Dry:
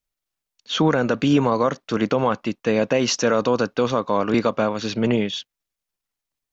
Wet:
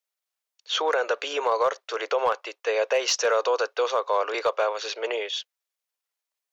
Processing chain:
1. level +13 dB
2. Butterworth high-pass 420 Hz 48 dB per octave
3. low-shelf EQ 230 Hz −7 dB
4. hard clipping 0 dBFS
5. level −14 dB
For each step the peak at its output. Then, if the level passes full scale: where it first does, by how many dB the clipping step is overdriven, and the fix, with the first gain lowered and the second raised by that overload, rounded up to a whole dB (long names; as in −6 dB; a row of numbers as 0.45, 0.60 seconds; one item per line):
+7.0, +4.5, +3.5, 0.0, −14.0 dBFS
step 1, 3.5 dB
step 1 +9 dB, step 5 −10 dB